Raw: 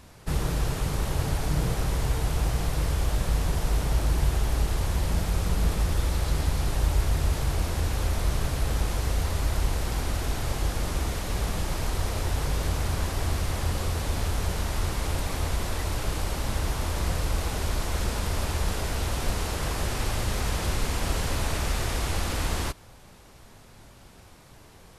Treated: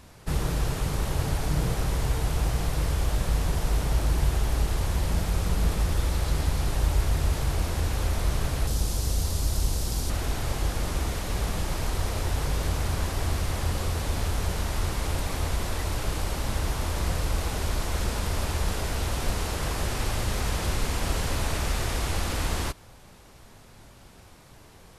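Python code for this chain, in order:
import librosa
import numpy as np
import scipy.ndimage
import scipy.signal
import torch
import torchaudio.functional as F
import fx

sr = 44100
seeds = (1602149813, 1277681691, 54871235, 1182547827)

y = fx.curve_eq(x, sr, hz=(190.0, 2100.0, 5000.0), db=(0, -8, 5), at=(8.67, 10.1))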